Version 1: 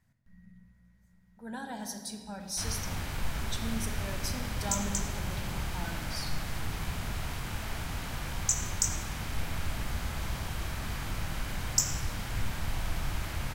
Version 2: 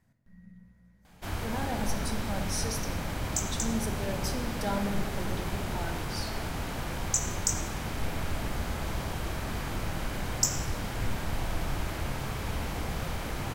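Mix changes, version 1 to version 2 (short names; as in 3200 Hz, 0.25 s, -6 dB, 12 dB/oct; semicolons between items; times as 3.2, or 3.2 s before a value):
background: entry -1.35 s; master: add bell 420 Hz +8 dB 2.2 oct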